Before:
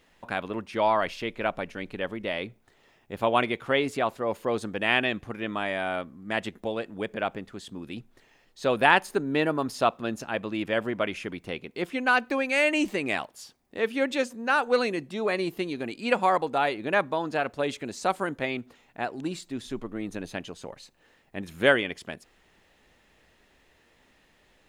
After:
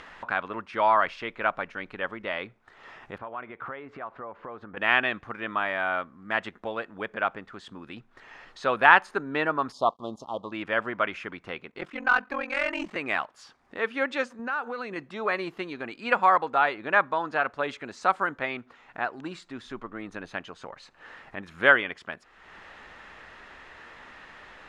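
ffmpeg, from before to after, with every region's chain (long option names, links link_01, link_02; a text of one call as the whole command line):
ffmpeg -i in.wav -filter_complex "[0:a]asettb=1/sr,asplit=3[link_01][link_02][link_03];[link_01]atrim=end=3.184[link_04];[link_02]atrim=start=3.18:end=4.77,asetpts=PTS-STARTPTS,afade=type=in:duration=0.004:curve=qsin,afade=type=out:start_time=1.586:duration=0.004:curve=qsin,lowpass=1800,acompressor=threshold=-37dB:ratio=4:attack=3.2:release=140:knee=1:detection=peak[link_05];[link_03]atrim=start=4.766[link_06];[link_04][link_05]acrossfade=duration=0.004:curve1=hsin:curve2=qsin[link_07];[link_07][link_06]acrossfade=duration=0.004:curve1=qsin:curve2=hsin,asettb=1/sr,asplit=3[link_08][link_09][link_10];[link_08]atrim=end=9.724[link_11];[link_09]atrim=start=9.72:end=10.52,asetpts=PTS-STARTPTS,afade=type=in:duration=0.004:curve=qsin,afade=type=out:start_time=0.796:duration=0.004:curve=qsin,aeval=exprs='sgn(val(0))*max(abs(val(0))-0.00266,0)':channel_layout=same,asuperstop=centerf=1900:order=12:qfactor=0.91[link_12];[link_10]atrim=start=10.516[link_13];[link_11][link_12]acrossfade=duration=0.004:curve1=hsin:curve2=qsin[link_14];[link_14][link_13]acrossfade=duration=0.004:curve1=qsin:curve2=hsin,asettb=1/sr,asplit=3[link_15][link_16][link_17];[link_15]atrim=end=11.704[link_18];[link_16]atrim=start=11.7:end=12.96,asetpts=PTS-STARTPTS,afade=type=in:duration=0.004:curve=qsin,afade=type=out:start_time=1.256:duration=0.004:curve=qsin,equalizer=frequency=94:width=0.61:gain=4.5,aeval=exprs='val(0)*sin(2*PI*22*n/s)':channel_layout=same,aeval=exprs='(tanh(7.08*val(0)+0.3)-tanh(0.3))/7.08':channel_layout=same[link_19];[link_17]atrim=start=12.956[link_20];[link_18][link_19]acrossfade=duration=0.004:curve1=hsin:curve2=qsin[link_21];[link_21][link_20]acrossfade=duration=0.004:curve1=qsin:curve2=hsin,asettb=1/sr,asplit=3[link_22][link_23][link_24];[link_22]atrim=end=14.394[link_25];[link_23]atrim=start=14.39:end=14.96,asetpts=PTS-STARTPTS,afade=type=in:duration=0.004:curve=qsin,afade=type=out:start_time=0.566:duration=0.004:curve=qsin,acompressor=threshold=-31dB:ratio=6:attack=3.2:release=140:knee=1:detection=peak,highpass=110,lowshelf=frequency=220:gain=11.5[link_26];[link_24]atrim=start=14.956[link_27];[link_25][link_26]acrossfade=duration=0.004:curve1=hsin:curve2=qsin[link_28];[link_28][link_27]acrossfade=duration=0.004:curve1=qsin:curve2=hsin,acompressor=mode=upward:threshold=-34dB:ratio=2.5,lowpass=6300,equalizer=frequency=1300:width_type=o:width=1.6:gain=14.5,volume=-7dB" out.wav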